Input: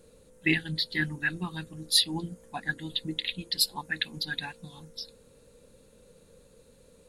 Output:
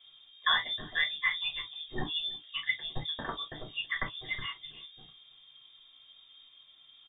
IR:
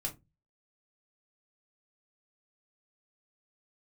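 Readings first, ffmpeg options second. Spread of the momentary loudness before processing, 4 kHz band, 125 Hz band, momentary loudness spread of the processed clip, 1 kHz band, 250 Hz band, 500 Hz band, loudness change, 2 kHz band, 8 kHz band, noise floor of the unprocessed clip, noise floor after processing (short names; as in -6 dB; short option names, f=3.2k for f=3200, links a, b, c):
17 LU, -3.0 dB, -10.5 dB, 12 LU, +3.5 dB, -13.5 dB, -4.5 dB, -3.5 dB, -1.0 dB, under -40 dB, -59 dBFS, -59 dBFS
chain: -filter_complex "[0:a]lowpass=f=3.1k:t=q:w=0.5098,lowpass=f=3.1k:t=q:w=0.6013,lowpass=f=3.1k:t=q:w=0.9,lowpass=f=3.1k:t=q:w=2.563,afreqshift=-3700,asplit=2[a][b];[b]adelay=326.5,volume=-23dB,highshelf=f=4k:g=-7.35[c];[a][c]amix=inputs=2:normalize=0[d];[1:a]atrim=start_sample=2205,atrim=end_sample=3087[e];[d][e]afir=irnorm=-1:irlink=0"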